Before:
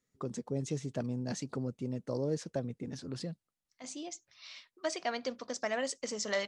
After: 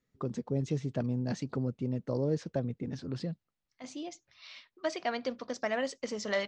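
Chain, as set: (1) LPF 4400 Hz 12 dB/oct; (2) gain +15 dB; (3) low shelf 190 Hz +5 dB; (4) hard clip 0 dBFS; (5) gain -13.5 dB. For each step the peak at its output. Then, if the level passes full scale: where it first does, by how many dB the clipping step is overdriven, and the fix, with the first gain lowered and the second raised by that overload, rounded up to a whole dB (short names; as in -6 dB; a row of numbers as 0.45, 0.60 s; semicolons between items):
-18.5, -3.5, -3.5, -3.5, -17.0 dBFS; no overload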